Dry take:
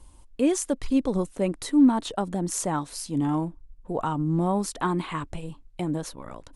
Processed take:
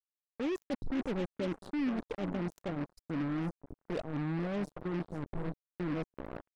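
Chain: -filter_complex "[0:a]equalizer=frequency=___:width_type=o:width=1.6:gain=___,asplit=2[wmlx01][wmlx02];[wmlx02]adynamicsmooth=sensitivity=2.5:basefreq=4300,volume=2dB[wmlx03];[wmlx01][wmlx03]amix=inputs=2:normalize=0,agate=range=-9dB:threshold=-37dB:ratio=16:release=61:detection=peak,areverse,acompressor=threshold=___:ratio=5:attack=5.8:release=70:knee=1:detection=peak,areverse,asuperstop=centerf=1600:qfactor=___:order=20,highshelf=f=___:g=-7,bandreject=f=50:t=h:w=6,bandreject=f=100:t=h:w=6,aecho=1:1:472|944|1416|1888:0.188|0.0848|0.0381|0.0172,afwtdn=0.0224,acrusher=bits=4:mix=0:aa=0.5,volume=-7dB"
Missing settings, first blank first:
98, -3, -25dB, 0.53, 7000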